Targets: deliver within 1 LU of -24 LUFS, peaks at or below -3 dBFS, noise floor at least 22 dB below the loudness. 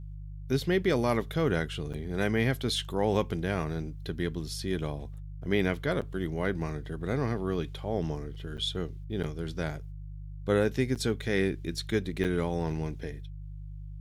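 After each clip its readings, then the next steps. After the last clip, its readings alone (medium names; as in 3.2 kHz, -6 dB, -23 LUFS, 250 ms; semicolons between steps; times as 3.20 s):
dropouts 6; longest dropout 7.6 ms; hum 50 Hz; highest harmonic 150 Hz; hum level -38 dBFS; loudness -31.0 LUFS; peak level -13.0 dBFS; loudness target -24.0 LUFS
-> interpolate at 1.93/6.01/8.57/9.23/10.95/12.24 s, 7.6 ms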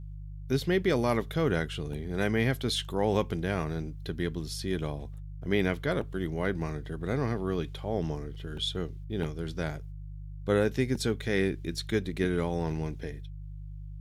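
dropouts 0; hum 50 Hz; highest harmonic 150 Hz; hum level -38 dBFS
-> de-hum 50 Hz, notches 3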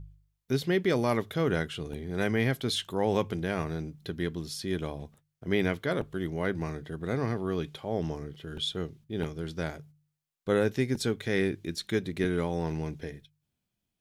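hum not found; loudness -31.0 LUFS; peak level -13.0 dBFS; loudness target -24.0 LUFS
-> trim +7 dB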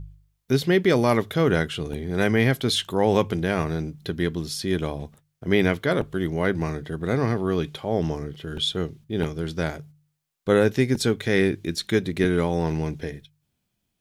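loudness -24.0 LUFS; peak level -6.0 dBFS; noise floor -77 dBFS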